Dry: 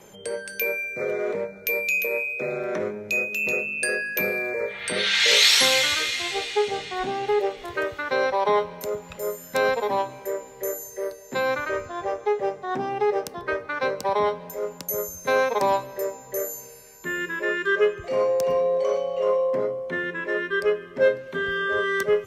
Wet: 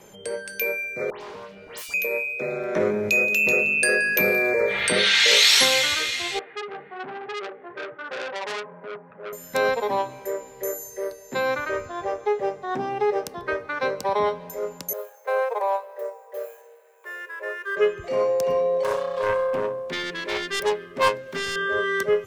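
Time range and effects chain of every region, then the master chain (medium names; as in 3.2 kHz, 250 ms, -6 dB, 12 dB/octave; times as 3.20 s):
1.10–1.94 s: self-modulated delay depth 0.9 ms + compression 2.5:1, threshold -39 dBFS + phase dispersion highs, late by 114 ms, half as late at 2.7 kHz
2.76–5.64 s: delay 175 ms -22.5 dB + level flattener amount 50%
6.39–9.33 s: elliptic band-pass 150–1700 Hz, stop band 50 dB + flange 1.2 Hz, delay 4 ms, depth 8.2 ms, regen -36% + transformer saturation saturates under 3.5 kHz
14.93–17.77 s: median filter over 9 samples + Chebyshev high-pass 450 Hz, order 5 + peaking EQ 5.7 kHz -13.5 dB 2.4 oct
18.83–21.56 s: self-modulated delay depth 0.6 ms + treble shelf 9.7 kHz +9.5 dB
whole clip: none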